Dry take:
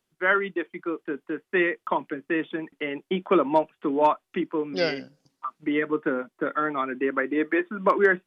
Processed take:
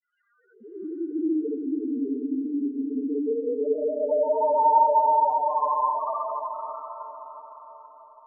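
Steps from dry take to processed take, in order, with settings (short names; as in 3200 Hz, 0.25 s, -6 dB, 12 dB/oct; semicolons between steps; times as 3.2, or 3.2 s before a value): Paulstretch 19×, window 0.05 s, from 3.8; loudest bins only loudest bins 2; dispersion highs, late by 65 ms, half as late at 2800 Hz; on a send: diffused feedback echo 0.578 s, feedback 44%, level -8 dB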